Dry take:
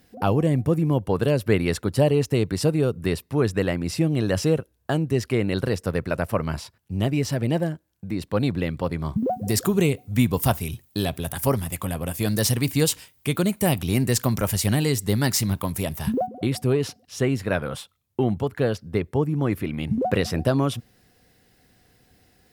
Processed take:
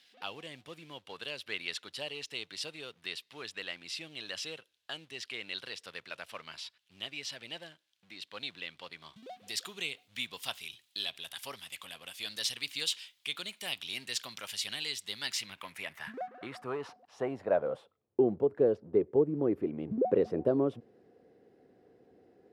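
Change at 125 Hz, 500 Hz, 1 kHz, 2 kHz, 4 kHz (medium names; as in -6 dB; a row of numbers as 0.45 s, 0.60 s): -25.5 dB, -9.0 dB, -13.5 dB, -8.0 dB, -3.0 dB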